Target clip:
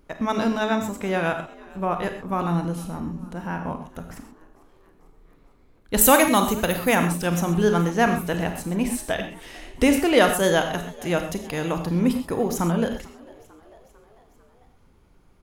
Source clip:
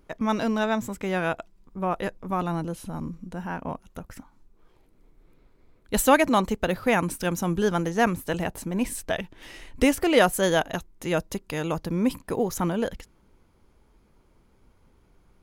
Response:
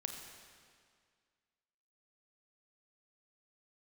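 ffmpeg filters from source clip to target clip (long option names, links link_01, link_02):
-filter_complex "[0:a]asettb=1/sr,asplit=3[link_01][link_02][link_03];[link_01]atrim=end=6.014[link_04];[link_02]atrim=start=6.01:end=6.95,asetpts=PTS-STARTPTS,afade=type=in:duration=0.004:curve=qsin,afade=type=out:start_time=0.936:duration=0.004:curve=qsin,aemphasis=mode=production:type=50fm[link_05];[link_03]atrim=start=6.946[link_06];[link_04][link_05]acrossfade=duration=0.004:curve1=hsin:curve2=qsin[link_07];[link_07][link_06]acrossfade=duration=0.004:curve1=qsin:curve2=hsin,asplit=5[link_08][link_09][link_10][link_11][link_12];[link_09]adelay=447,afreqshift=68,volume=-23.5dB[link_13];[link_10]adelay=894,afreqshift=136,volume=-27.8dB[link_14];[link_11]adelay=1341,afreqshift=204,volume=-32.1dB[link_15];[link_12]adelay=1788,afreqshift=272,volume=-36.4dB[link_16];[link_08][link_13][link_14][link_15][link_16]amix=inputs=5:normalize=0[link_17];[1:a]atrim=start_sample=2205,atrim=end_sample=6174[link_18];[link_17][link_18]afir=irnorm=-1:irlink=0,volume=4dB"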